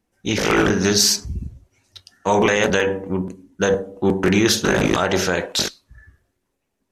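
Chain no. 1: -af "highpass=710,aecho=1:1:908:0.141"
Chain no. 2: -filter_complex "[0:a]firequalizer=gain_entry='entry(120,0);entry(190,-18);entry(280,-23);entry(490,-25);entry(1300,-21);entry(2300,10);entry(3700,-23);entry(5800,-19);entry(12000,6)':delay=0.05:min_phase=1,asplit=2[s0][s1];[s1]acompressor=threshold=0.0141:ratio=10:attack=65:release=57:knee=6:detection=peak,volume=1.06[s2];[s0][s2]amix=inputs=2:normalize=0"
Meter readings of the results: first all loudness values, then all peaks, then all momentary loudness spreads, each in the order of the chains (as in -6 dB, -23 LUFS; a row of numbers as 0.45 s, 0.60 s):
-21.5 LUFS, -22.0 LUFS; -4.0 dBFS, -3.0 dBFS; 21 LU, 14 LU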